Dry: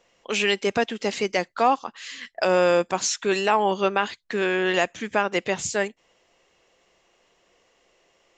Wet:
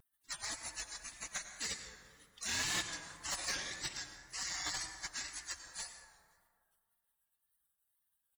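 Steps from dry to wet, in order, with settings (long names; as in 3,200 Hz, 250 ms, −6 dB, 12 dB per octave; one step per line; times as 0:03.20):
frequency inversion band by band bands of 2,000 Hz
gate on every frequency bin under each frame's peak −20 dB weak
high-pass filter 84 Hz 12 dB per octave
parametric band 480 Hz +10 dB 0.21 octaves
gate on every frequency bin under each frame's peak −25 dB weak
hollow resonant body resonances 1,700/3,600 Hz, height 9 dB
echo with shifted repeats 175 ms, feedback 50%, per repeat −56 Hz, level −23 dB
on a send at −6.5 dB: convolution reverb RT60 2.0 s, pre-delay 83 ms
on the sum: pitch vibrato 1.9 Hz 65 cents
slew-rate limiting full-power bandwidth 15 Hz
level +17.5 dB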